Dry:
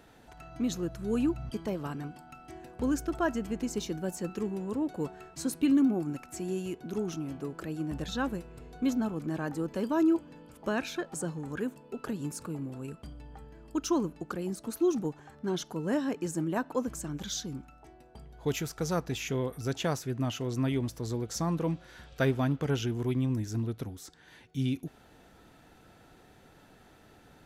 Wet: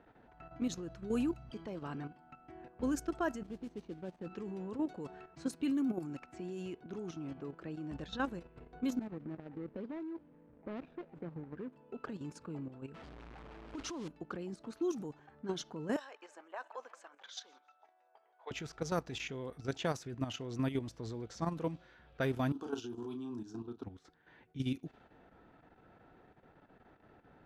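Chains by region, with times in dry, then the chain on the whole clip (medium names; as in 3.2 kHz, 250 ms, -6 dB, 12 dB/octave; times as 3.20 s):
3.43–4.26 s: median filter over 25 samples + modulation noise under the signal 24 dB + upward expansion, over -43 dBFS
8.99–11.73 s: median filter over 41 samples + treble shelf 4.5 kHz -10 dB + compression 4:1, threshold -34 dBFS
12.94–14.08 s: one-bit delta coder 64 kbps, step -36 dBFS + compressor with a negative ratio -32 dBFS
15.96–18.51 s: high-pass 620 Hz 24 dB/octave + feedback delay 169 ms, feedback 53%, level -22.5 dB
22.52–23.84 s: high-pass 120 Hz + static phaser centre 550 Hz, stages 6 + doubling 33 ms -6.5 dB
whole clip: level-controlled noise filter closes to 1.7 kHz, open at -24 dBFS; bass shelf 150 Hz -5 dB; level held to a coarse grid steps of 10 dB; trim -1.5 dB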